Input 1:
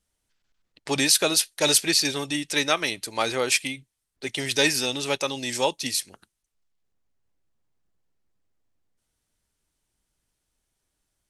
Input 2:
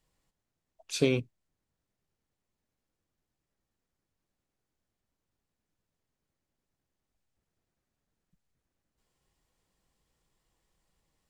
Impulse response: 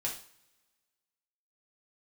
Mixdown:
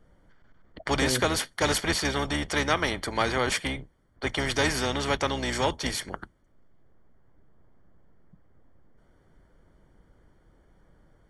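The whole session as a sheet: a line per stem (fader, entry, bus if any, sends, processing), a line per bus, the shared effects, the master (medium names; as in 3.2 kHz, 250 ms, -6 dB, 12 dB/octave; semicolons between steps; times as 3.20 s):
0.0 dB, 0.00 s, no send, octave divider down 2 oct, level -3 dB; Savitzky-Golay filter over 41 samples
-0.5 dB, 0.00 s, no send, Chebyshev low-pass 640 Hz, order 4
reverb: none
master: spectrum-flattening compressor 2:1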